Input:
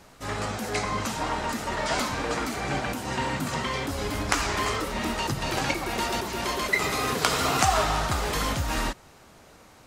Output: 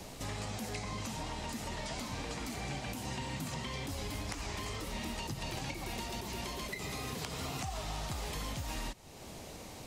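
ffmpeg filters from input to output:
-filter_complex "[0:a]acompressor=threshold=-48dB:ratio=2,equalizer=f=1.4k:w=1.6:g=-11.5,acrossover=split=230|770|2300[a][b][c][d];[a]acompressor=threshold=-46dB:ratio=4[e];[b]acompressor=threshold=-58dB:ratio=4[f];[c]acompressor=threshold=-52dB:ratio=4[g];[d]acompressor=threshold=-52dB:ratio=4[h];[e][f][g][h]amix=inputs=4:normalize=0,volume=7.5dB"

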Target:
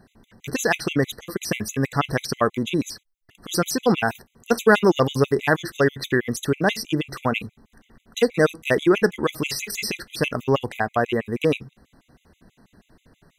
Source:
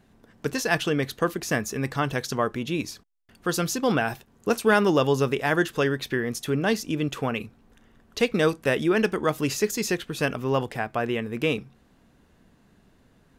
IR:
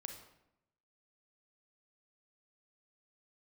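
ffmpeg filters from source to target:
-af "acontrast=64,afftfilt=real='re*gt(sin(2*PI*6.2*pts/sr)*(1-2*mod(floor(b*sr/1024/2000),2)),0)':imag='im*gt(sin(2*PI*6.2*pts/sr)*(1-2*mod(floor(b*sr/1024/2000),2)),0)':win_size=1024:overlap=0.75"

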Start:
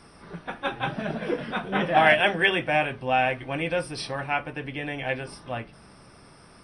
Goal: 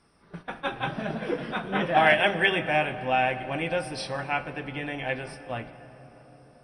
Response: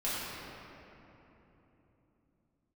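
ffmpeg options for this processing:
-filter_complex "[0:a]agate=range=-11dB:threshold=-40dB:ratio=16:detection=peak,asplit=2[a][b];[1:a]atrim=start_sample=2205,asetrate=25578,aresample=44100,adelay=65[c];[b][c]afir=irnorm=-1:irlink=0,volume=-24dB[d];[a][d]amix=inputs=2:normalize=0,volume=-1.5dB"

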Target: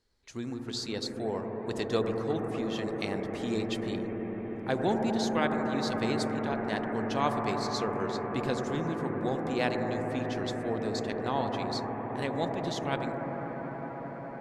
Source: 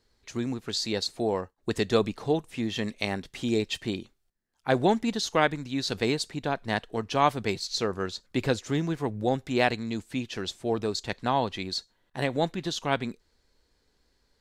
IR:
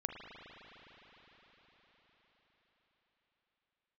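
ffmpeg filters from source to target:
-filter_complex "[0:a]asettb=1/sr,asplit=3[a][b][c];[a]atrim=end=5.294[d];[b]atrim=start=5.29:end=5.72,asetpts=PTS-STARTPTS,afade=t=in:d=0.004:c=qsin,afade=t=out:st=0.426:d=0.004:c=qsin,bandreject=f=5.5k:w=6.8[e];[c]atrim=start=5.716[f];[d][e]acrossfade=d=0.004:c1=hsin:c2=qsin[g];[g][f]acrossfade=d=0.004:c1=qsin:c2=hsin[h];[1:a]atrim=start_sample=2205,asetrate=22932,aresample=44100[i];[h][i]afir=irnorm=-1:irlink=0,volume=-8dB"

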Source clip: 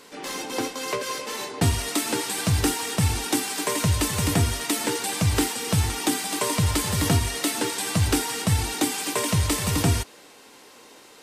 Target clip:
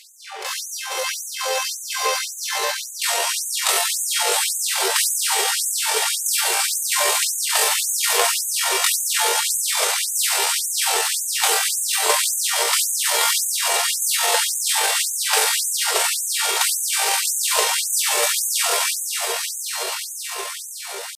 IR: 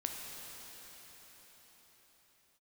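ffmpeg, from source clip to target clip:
-filter_complex "[1:a]atrim=start_sample=2205,asetrate=36603,aresample=44100[a];[0:a][a]afir=irnorm=-1:irlink=0,atempo=0.53,afftfilt=real='re*gte(b*sr/1024,370*pow(6300/370,0.5+0.5*sin(2*PI*1.8*pts/sr)))':imag='im*gte(b*sr/1024,370*pow(6300/370,0.5+0.5*sin(2*PI*1.8*pts/sr)))':win_size=1024:overlap=0.75,volume=7.5dB"

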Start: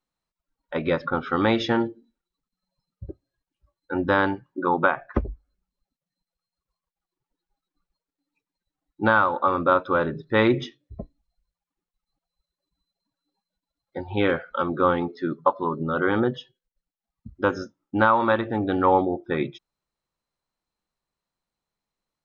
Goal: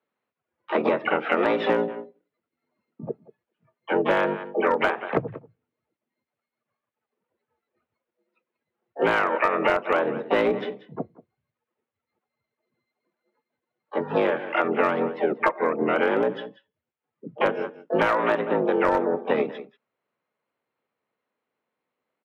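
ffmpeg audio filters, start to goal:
-filter_complex "[0:a]aecho=1:1:186:0.1,asplit=4[a][b][c][d];[b]asetrate=22050,aresample=44100,atempo=2,volume=-6dB[e];[c]asetrate=66075,aresample=44100,atempo=0.66742,volume=-8dB[f];[d]asetrate=88200,aresample=44100,atempo=0.5,volume=-11dB[g];[a][e][f][g]amix=inputs=4:normalize=0,afreqshift=63,highpass=f=170:w=0.5412,highpass=f=170:w=1.3066,equalizer=f=190:t=q:w=4:g=-4,equalizer=f=290:t=q:w=4:g=-3,equalizer=f=480:t=q:w=4:g=6,lowpass=f=2.9k:w=0.5412,lowpass=f=2.9k:w=1.3066,aeval=exprs='clip(val(0),-1,0.316)':c=same,acompressor=threshold=-23dB:ratio=6,volume=4.5dB"

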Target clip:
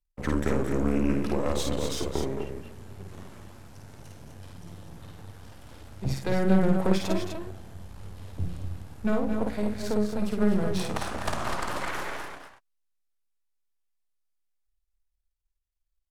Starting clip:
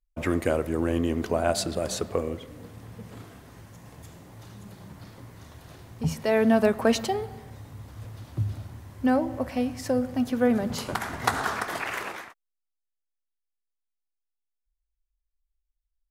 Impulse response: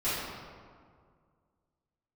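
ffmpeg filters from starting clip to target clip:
-filter_complex "[0:a]aeval=exprs='if(lt(val(0),0),0.251*val(0),val(0))':c=same,acrossover=split=350[a][b];[b]acompressor=threshold=-28dB:ratio=6[c];[a][c]amix=inputs=2:normalize=0,asetrate=37084,aresample=44100,atempo=1.18921,aecho=1:1:52.48|218.7|250.7:0.708|0.316|0.501"

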